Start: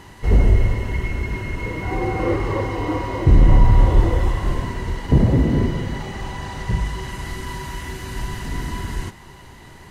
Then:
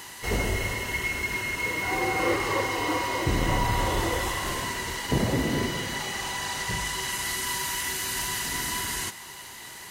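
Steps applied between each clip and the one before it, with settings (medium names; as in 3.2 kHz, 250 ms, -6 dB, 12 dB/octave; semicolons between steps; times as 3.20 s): tilt EQ +4 dB/octave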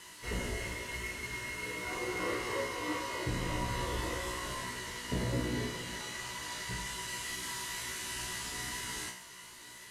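CVSD coder 64 kbps; band-stop 790 Hz, Q 5.2; feedback comb 61 Hz, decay 0.47 s, harmonics all, mix 90%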